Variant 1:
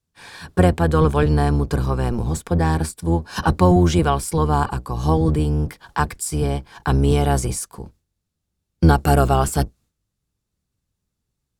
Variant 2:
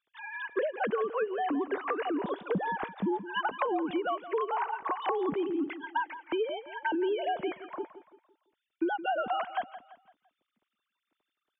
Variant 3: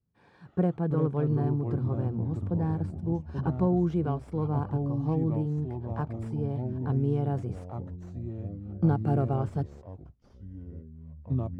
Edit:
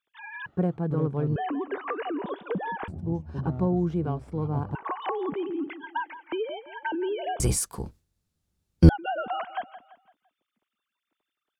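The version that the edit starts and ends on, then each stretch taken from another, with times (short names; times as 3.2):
2
0.46–1.36 from 3
2.88–4.75 from 3
7.4–8.89 from 1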